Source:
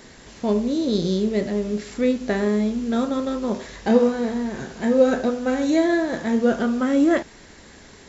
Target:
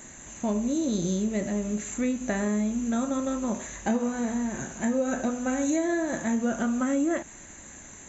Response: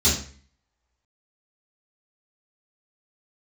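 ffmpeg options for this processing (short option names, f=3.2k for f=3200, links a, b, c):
-af "superequalizer=7b=0.447:13b=0.562:14b=0.316:15b=3.98,acompressor=threshold=-20dB:ratio=6,volume=-2.5dB"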